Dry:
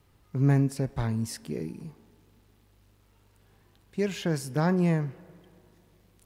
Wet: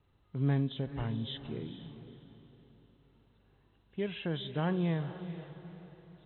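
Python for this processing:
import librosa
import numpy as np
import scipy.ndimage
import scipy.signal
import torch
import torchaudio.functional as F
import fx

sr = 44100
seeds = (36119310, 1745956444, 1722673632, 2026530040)

y = fx.freq_compress(x, sr, knee_hz=2600.0, ratio=4.0)
y = fx.echo_diffused(y, sr, ms=462, feedback_pct=43, wet_db=-12)
y = fx.env_lowpass(y, sr, base_hz=2100.0, full_db=-25.0)
y = F.gain(torch.from_numpy(y), -7.0).numpy()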